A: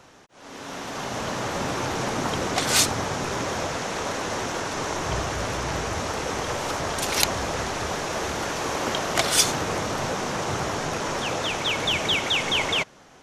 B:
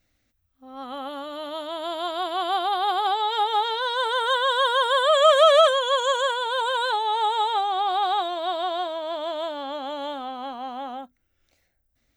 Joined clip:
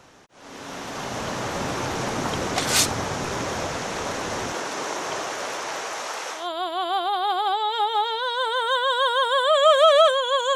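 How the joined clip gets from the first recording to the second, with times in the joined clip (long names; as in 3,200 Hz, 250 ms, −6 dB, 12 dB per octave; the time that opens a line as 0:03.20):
A
0:04.52–0:06.49: high-pass filter 220 Hz → 820 Hz
0:06.39: continue with B from 0:01.98, crossfade 0.20 s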